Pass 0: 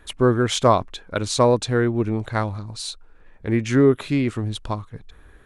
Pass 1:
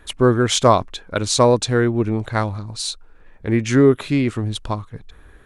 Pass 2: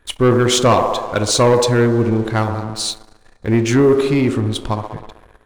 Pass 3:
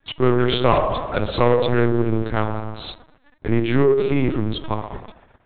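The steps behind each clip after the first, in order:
dynamic bell 6.5 kHz, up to +4 dB, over -37 dBFS, Q 0.72; trim +2.5 dB
feedback echo behind a band-pass 64 ms, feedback 72%, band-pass 600 Hz, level -6.5 dB; two-slope reverb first 0.27 s, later 2.2 s, from -20 dB, DRR 13.5 dB; waveshaping leveller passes 2; trim -4 dB
companding laws mixed up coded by A; in parallel at -5 dB: saturation -16 dBFS, distortion -11 dB; on the sum: LPC vocoder at 8 kHz pitch kept; trim -5.5 dB

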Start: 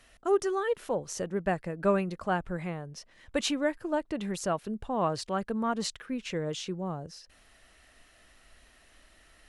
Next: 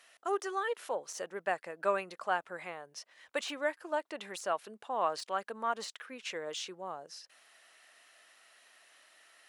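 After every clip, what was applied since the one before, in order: de-esser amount 90%; high-pass 650 Hz 12 dB/octave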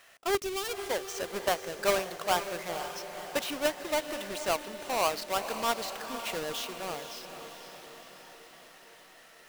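square wave that keeps the level; time-frequency box 0.37–0.90 s, 430–2100 Hz -8 dB; echo that smears into a reverb 507 ms, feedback 61%, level -9.5 dB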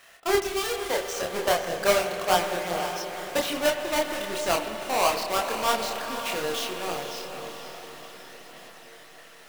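chorus voices 2, 0.87 Hz, delay 28 ms, depth 1.6 ms; spring tank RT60 3.4 s, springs 50/56 ms, chirp 35 ms, DRR 7.5 dB; trim +8 dB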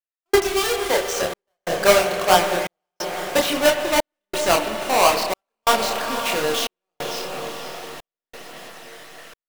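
trance gate "..xxxxxx" 90 bpm -60 dB; trim +7 dB

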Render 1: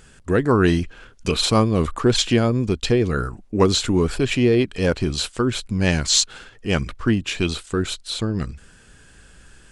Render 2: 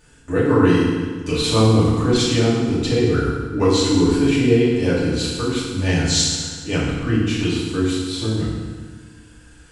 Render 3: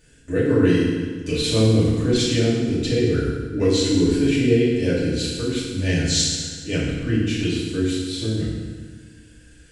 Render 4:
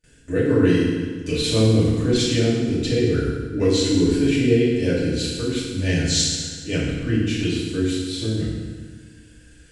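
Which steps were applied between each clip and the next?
FDN reverb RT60 1.5 s, low-frequency decay 1.25×, high-frequency decay 0.85×, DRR -9 dB; trim -9 dB
high-order bell 1 kHz -12 dB 1 oct; trim -2 dB
gate with hold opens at -44 dBFS

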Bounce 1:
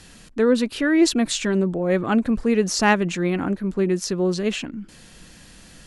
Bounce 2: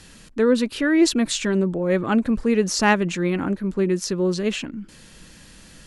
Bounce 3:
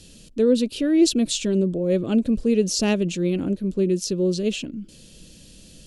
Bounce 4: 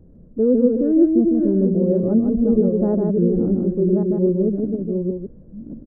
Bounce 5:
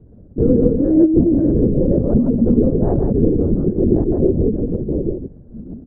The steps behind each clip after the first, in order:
band-stop 720 Hz, Q 12
high-order bell 1.3 kHz -15 dB
chunks repeated in reverse 576 ms, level -4.5 dB; Gaussian low-pass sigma 9.7 samples; delay 155 ms -3.5 dB; trim +2.5 dB
LPC vocoder at 8 kHz whisper; trim +2.5 dB

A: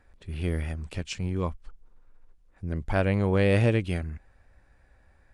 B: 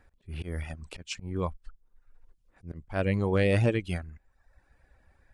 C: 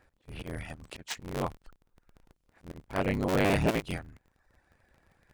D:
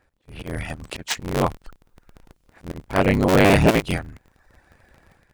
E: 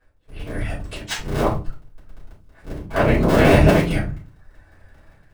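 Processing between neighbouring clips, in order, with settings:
reverb removal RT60 0.81 s; slow attack 161 ms
cycle switcher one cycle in 3, inverted; bass shelf 110 Hz -9 dB
level rider gain up to 11.5 dB
simulated room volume 150 m³, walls furnished, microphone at 5.2 m; trim -10.5 dB

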